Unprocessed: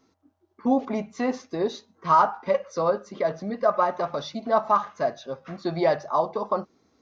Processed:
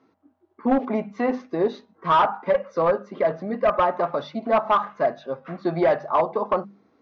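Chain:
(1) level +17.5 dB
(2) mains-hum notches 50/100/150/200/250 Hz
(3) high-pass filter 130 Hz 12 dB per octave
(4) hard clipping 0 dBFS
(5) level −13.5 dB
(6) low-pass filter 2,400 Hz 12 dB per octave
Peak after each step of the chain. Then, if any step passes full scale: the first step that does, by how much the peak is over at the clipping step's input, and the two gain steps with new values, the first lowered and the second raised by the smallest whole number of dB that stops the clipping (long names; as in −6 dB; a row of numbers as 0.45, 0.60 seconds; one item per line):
+9.0, +9.0, +9.0, 0.0, −13.5, −13.0 dBFS
step 1, 9.0 dB
step 1 +8.5 dB, step 5 −4.5 dB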